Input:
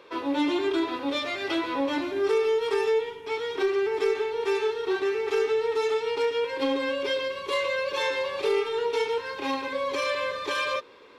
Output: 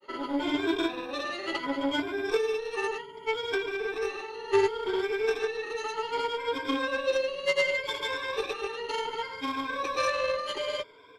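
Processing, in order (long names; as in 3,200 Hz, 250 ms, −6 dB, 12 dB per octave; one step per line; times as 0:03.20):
rippled gain that drifts along the octave scale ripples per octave 1.7, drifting +0.67 Hz, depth 20 dB
harmonic generator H 3 −16 dB, 6 −31 dB, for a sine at −10 dBFS
granular cloud, pitch spread up and down by 0 semitones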